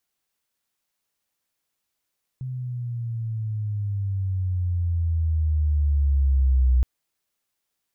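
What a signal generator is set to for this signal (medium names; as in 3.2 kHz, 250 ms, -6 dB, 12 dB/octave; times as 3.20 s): sweep logarithmic 130 Hz -> 62 Hz -28 dBFS -> -14.5 dBFS 4.42 s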